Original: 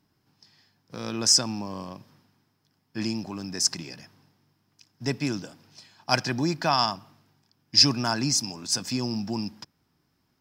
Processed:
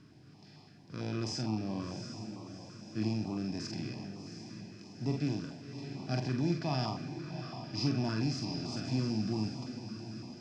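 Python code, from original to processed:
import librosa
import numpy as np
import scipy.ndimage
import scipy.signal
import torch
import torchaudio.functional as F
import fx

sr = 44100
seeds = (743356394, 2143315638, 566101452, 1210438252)

y = fx.bin_compress(x, sr, power=0.6)
y = fx.high_shelf(y, sr, hz=3700.0, db=-11.0)
y = fx.doubler(y, sr, ms=46.0, db=-8.0)
y = fx.echo_diffused(y, sr, ms=725, feedback_pct=54, wet_db=-9.5)
y = fx.hpss(y, sr, part='percussive', gain_db=-11)
y = fx.quant_dither(y, sr, seeds[0], bits=10, dither='none')
y = scipy.signal.sosfilt(scipy.signal.butter(2, 5200.0, 'lowpass', fs=sr, output='sos'), y)
y = fx.low_shelf(y, sr, hz=130.0, db=8.5)
y = fx.filter_held_notch(y, sr, hz=8.9, low_hz=790.0, high_hz=1600.0)
y = y * librosa.db_to_amplitude(-7.5)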